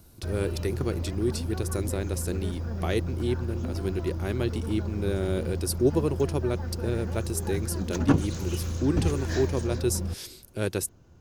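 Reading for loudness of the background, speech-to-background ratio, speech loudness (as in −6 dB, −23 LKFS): −32.0 LKFS, 1.5 dB, −30.5 LKFS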